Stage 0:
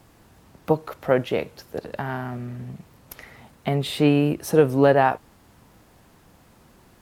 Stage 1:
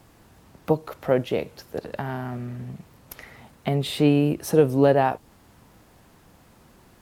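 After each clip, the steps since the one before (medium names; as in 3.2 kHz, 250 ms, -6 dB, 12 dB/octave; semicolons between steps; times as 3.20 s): dynamic bell 1.5 kHz, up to -6 dB, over -34 dBFS, Q 0.8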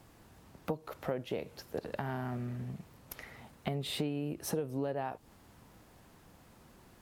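compression 12:1, threshold -26 dBFS, peak gain reduction 15.5 dB; trim -5 dB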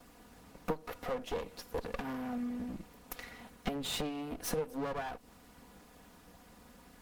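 comb filter that takes the minimum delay 4.1 ms; trim +3 dB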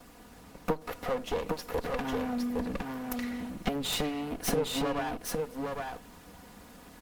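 delay 811 ms -3.5 dB; trim +5 dB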